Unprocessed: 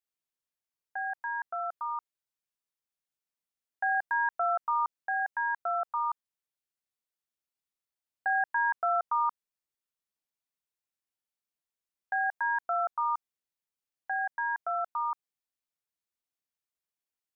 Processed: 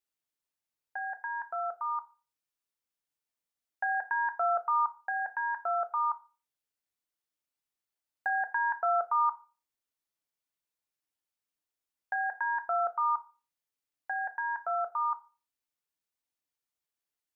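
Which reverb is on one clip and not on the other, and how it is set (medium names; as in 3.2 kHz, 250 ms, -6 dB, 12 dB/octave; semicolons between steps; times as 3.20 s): FDN reverb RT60 0.34 s, low-frequency decay 0.75×, high-frequency decay 0.85×, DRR 8 dB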